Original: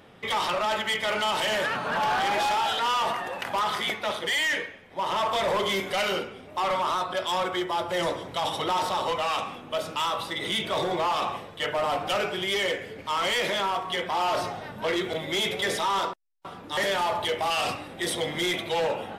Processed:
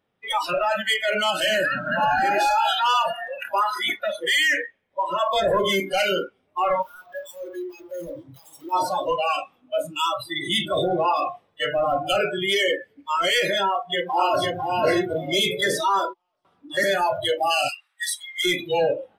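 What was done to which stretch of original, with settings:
6.82–8.73 hard clip -33 dBFS
13.68–14.56 echo throw 0.5 s, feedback 35%, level -1.5 dB
17.68–18.45 HPF 1200 Hz 24 dB/oct
whole clip: spectral noise reduction 29 dB; notch 6900 Hz, Q 18; gain +6 dB

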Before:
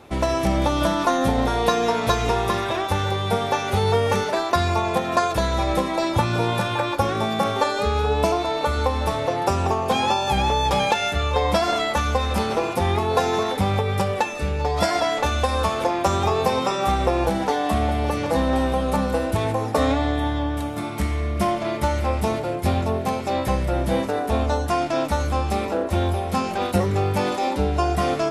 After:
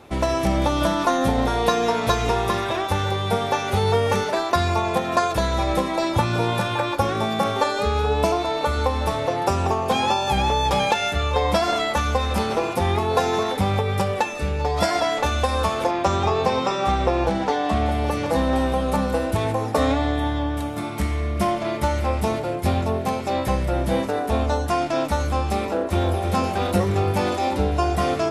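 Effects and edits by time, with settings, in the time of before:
15.91–17.86 LPF 6400 Hz
25.59–26.23 echo throw 0.32 s, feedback 80%, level -7.5 dB

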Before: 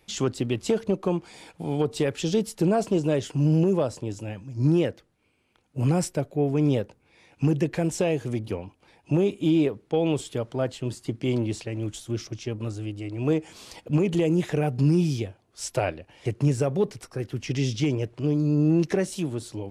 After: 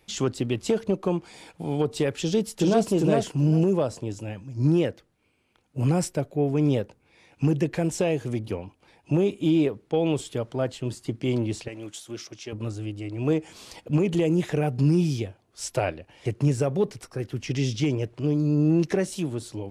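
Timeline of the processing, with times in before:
2.19–2.89 echo throw 0.4 s, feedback 15%, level -2.5 dB
11.68–12.53 HPF 550 Hz 6 dB/oct

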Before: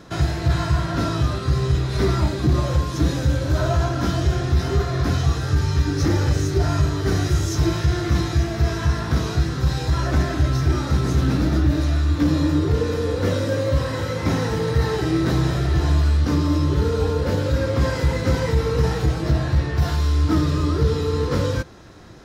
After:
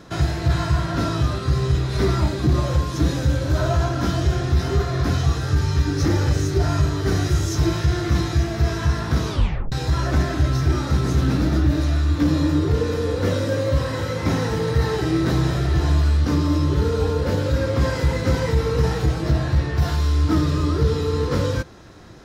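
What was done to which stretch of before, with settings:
9.29 tape stop 0.43 s

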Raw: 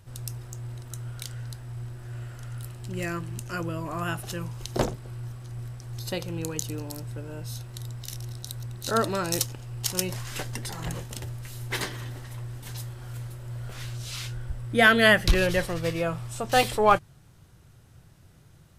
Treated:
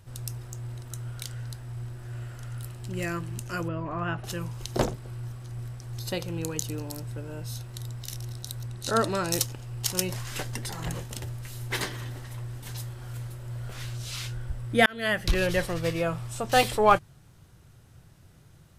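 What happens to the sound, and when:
3.68–4.24 LPF 2400 Hz
8.68–9.28 steep low-pass 12000 Hz
14.86–15.85 fade in equal-power

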